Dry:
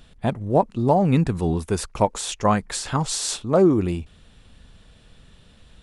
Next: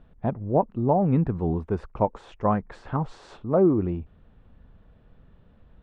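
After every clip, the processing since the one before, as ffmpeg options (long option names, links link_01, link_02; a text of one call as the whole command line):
ffmpeg -i in.wav -af "lowpass=1200,volume=-3dB" out.wav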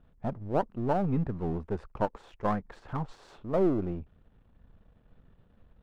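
ffmpeg -i in.wav -af "aeval=exprs='if(lt(val(0),0),0.447*val(0),val(0))':channel_layout=same,volume=-3.5dB" out.wav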